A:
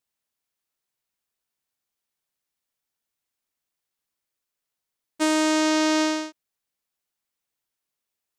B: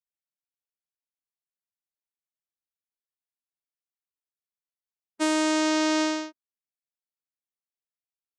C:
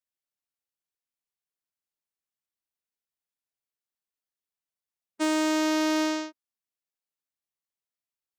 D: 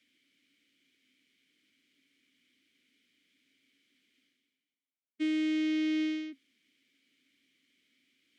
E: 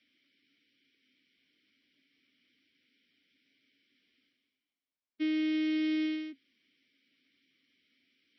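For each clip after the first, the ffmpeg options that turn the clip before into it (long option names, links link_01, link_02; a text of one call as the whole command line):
ffmpeg -i in.wav -af "afftdn=noise_reduction=17:noise_floor=-43,volume=-2.5dB" out.wav
ffmpeg -i in.wav -af "asoftclip=type=tanh:threshold=-17dB" out.wav
ffmpeg -i in.wav -filter_complex "[0:a]areverse,acompressor=mode=upward:threshold=-32dB:ratio=2.5,areverse,asplit=3[link_01][link_02][link_03];[link_01]bandpass=frequency=270:width_type=q:width=8,volume=0dB[link_04];[link_02]bandpass=frequency=2290:width_type=q:width=8,volume=-6dB[link_05];[link_03]bandpass=frequency=3010:width_type=q:width=8,volume=-9dB[link_06];[link_04][link_05][link_06]amix=inputs=3:normalize=0,volume=5dB" out.wav
ffmpeg -i in.wav -ar 22050 -c:a libmp3lame -b:a 24k out.mp3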